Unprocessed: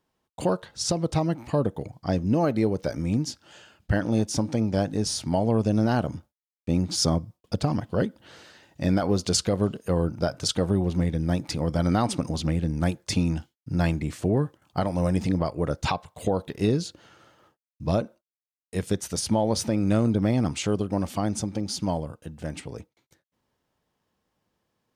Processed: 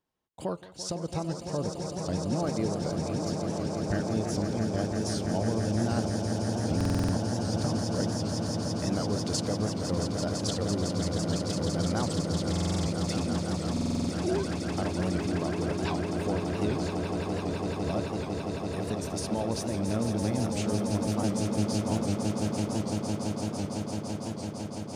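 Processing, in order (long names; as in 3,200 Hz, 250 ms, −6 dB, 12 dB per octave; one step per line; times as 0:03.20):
0:13.28–0:14.45: three sine waves on the formant tracks
on a send: echo that builds up and dies away 168 ms, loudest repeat 8, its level −8 dB
on the sum: buffer that repeats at 0:06.76/0:12.51/0:13.72, samples 2,048, times 7
wow of a warped record 78 rpm, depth 100 cents
level −8.5 dB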